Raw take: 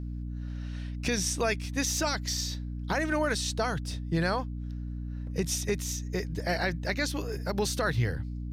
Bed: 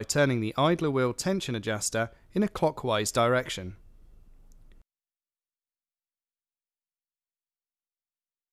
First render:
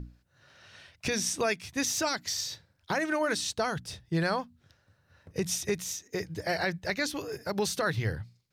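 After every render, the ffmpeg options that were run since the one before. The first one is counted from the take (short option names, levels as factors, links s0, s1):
-af "bandreject=f=60:t=h:w=6,bandreject=f=120:t=h:w=6,bandreject=f=180:t=h:w=6,bandreject=f=240:t=h:w=6,bandreject=f=300:t=h:w=6"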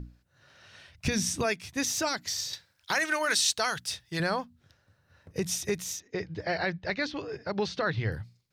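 -filter_complex "[0:a]asplit=3[s0][s1][s2];[s0]afade=t=out:st=0.9:d=0.02[s3];[s1]asubboost=boost=8:cutoff=220,afade=t=in:st=0.9:d=0.02,afade=t=out:st=1.43:d=0.02[s4];[s2]afade=t=in:st=1.43:d=0.02[s5];[s3][s4][s5]amix=inputs=3:normalize=0,asettb=1/sr,asplit=3[s6][s7][s8];[s6]atrim=end=2.534[s9];[s7]atrim=start=2.53:end=4.2,asetpts=PTS-STARTPTS,afade=t=in:d=0.004:c=qsin,afade=t=out:st=1.666:d=0.004:c=qsin,tiltshelf=f=850:g=-8.5[s10];[s8]atrim=start=4.196[s11];[s9][s10]acrossfade=d=0.004:c1=hsin:c2=qsin[s12];[s12][s11]acrossfade=d=0.004:c1=qsin:c2=hsin,asettb=1/sr,asplit=3[s13][s14][s15];[s13]atrim=end=6.004[s16];[s14]atrim=start=6:end=8.12,asetpts=PTS-STARTPTS,afade=t=in:d=0.004:c=qsin,afade=t=out:st=2.116:d=0.004:c=qsin,lowpass=f=4600:w=0.5412,lowpass=f=4600:w=1.3066[s17];[s15]atrim=start=8.116[s18];[s16][s17]acrossfade=d=0.004:c1=hsin:c2=qsin[s19];[s19][s18]acrossfade=d=0.004:c1=qsin:c2=hsin"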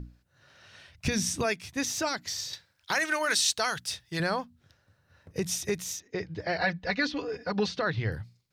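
-filter_complex "[0:a]asettb=1/sr,asplit=3[s0][s1][s2];[s0]atrim=end=1.754[s3];[s1]atrim=start=1.75:end=2.92,asetpts=PTS-STARTPTS,afade=t=in:d=0.004:c=qsin,afade=t=out:st=1.166:d=0.004:c=qsin,equalizer=f=15000:t=o:w=1.8:g=-3.5[s4];[s2]atrim=start=2.916[s5];[s3][s4]acrossfade=d=0.004:c1=hsin:c2=qsin[s6];[s6][s5]acrossfade=d=0.004:c1=qsin:c2=hsin,asettb=1/sr,asplit=3[s7][s8][s9];[s7]atrim=end=6.614[s10];[s8]atrim=start=6.61:end=7.71,asetpts=PTS-STARTPTS,afade=t=in:d=0.004:c=qsin,afade=t=out:st=1.096:d=0.004:c=qsin,aecho=1:1:4.1:0.88,atrim=end_sample=48510[s11];[s9]atrim=start=7.706[s12];[s10][s11]acrossfade=d=0.004:c1=hsin:c2=qsin[s13];[s13][s12]acrossfade=d=0.004:c1=qsin:c2=hsin"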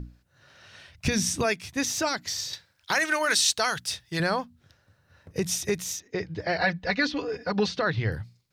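-af "volume=1.41"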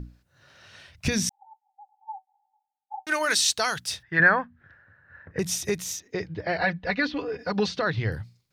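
-filter_complex "[0:a]asettb=1/sr,asplit=3[s0][s1][s2];[s0]atrim=end=1.294[s3];[s1]atrim=start=1.29:end=3.07,asetpts=PTS-STARTPTS,afade=t=in:d=0.004:c=qsin,afade=t=out:st=1.776:d=0.004:c=qsin,asuperpass=centerf=820:order=20:qfactor=6.3[s4];[s2]atrim=start=3.066[s5];[s3][s4]acrossfade=d=0.004:c1=hsin:c2=qsin[s6];[s6][s5]acrossfade=d=0.004:c1=qsin:c2=hsin,asplit=3[s7][s8][s9];[s7]afade=t=out:st=4.02:d=0.02[s10];[s8]lowpass=f=1700:t=q:w=6.4,afade=t=in:st=4.02:d=0.02,afade=t=out:st=5.38:d=0.02[s11];[s9]afade=t=in:st=5.38:d=0.02[s12];[s10][s11][s12]amix=inputs=3:normalize=0,asettb=1/sr,asplit=3[s13][s14][s15];[s13]atrim=end=6.284[s16];[s14]atrim=start=6.28:end=7.39,asetpts=PTS-STARTPTS,afade=t=in:d=0.004:c=qsin,afade=t=out:st=1.106:d=0.004:c=qsin,lowpass=3700[s17];[s15]atrim=start=7.386[s18];[s16][s17]acrossfade=d=0.004:c1=hsin:c2=qsin[s19];[s19][s18]acrossfade=d=0.004:c1=qsin:c2=hsin"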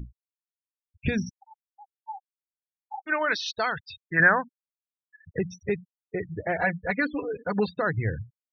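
-af "lowpass=2900,afftfilt=real='re*gte(hypot(re,im),0.0282)':imag='im*gte(hypot(re,im),0.0282)':win_size=1024:overlap=0.75"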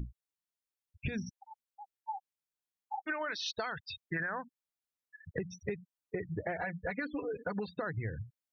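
-af "alimiter=limit=0.133:level=0:latency=1:release=92,acompressor=threshold=0.0224:ratio=10"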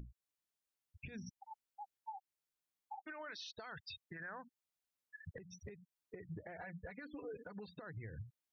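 -af "acompressor=threshold=0.01:ratio=6,alimiter=level_in=5.62:limit=0.0631:level=0:latency=1:release=293,volume=0.178"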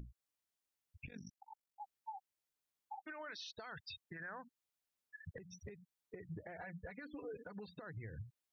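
-filter_complex "[0:a]asettb=1/sr,asplit=3[s0][s1][s2];[s0]atrim=end=1.064[s3];[s1]atrim=start=1.06:end=1.8,asetpts=PTS-STARTPTS,afade=t=in:d=0.004:c=qsin,afade=t=out:st=0.736:d=0.004:c=qsin,tremolo=f=47:d=0.919[s4];[s2]atrim=start=1.796[s5];[s3][s4]acrossfade=d=0.004:c1=hsin:c2=qsin[s6];[s6][s5]acrossfade=d=0.004:c1=qsin:c2=hsin"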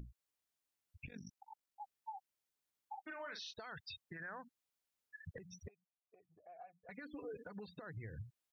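-filter_complex "[0:a]asplit=3[s0][s1][s2];[s0]afade=t=out:st=3.05:d=0.02[s3];[s1]asplit=2[s4][s5];[s5]adelay=41,volume=0.447[s6];[s4][s6]amix=inputs=2:normalize=0,afade=t=in:st=3.05:d=0.02,afade=t=out:st=3.52:d=0.02[s7];[s2]afade=t=in:st=3.52:d=0.02[s8];[s3][s7][s8]amix=inputs=3:normalize=0,asettb=1/sr,asplit=3[s9][s10][s11];[s9]atrim=end=5.684[s12];[s10]atrim=start=5.68:end=6.89,asetpts=PTS-STARTPTS,afade=t=in:d=0.004:c=qsin,afade=t=out:st=1.206:d=0.004:c=qsin,asplit=3[s13][s14][s15];[s13]bandpass=f=730:t=q:w=8,volume=1[s16];[s14]bandpass=f=1090:t=q:w=8,volume=0.501[s17];[s15]bandpass=f=2440:t=q:w=8,volume=0.355[s18];[s16][s17][s18]amix=inputs=3:normalize=0[s19];[s11]atrim=start=6.886[s20];[s12][s19]acrossfade=d=0.004:c1=hsin:c2=qsin[s21];[s21][s20]acrossfade=d=0.004:c1=qsin:c2=hsin"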